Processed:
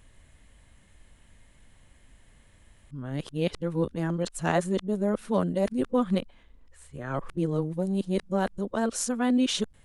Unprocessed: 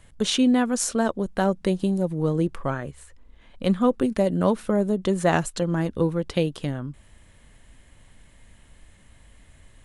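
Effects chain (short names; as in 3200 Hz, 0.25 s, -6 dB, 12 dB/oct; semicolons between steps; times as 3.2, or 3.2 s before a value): whole clip reversed; gain -4.5 dB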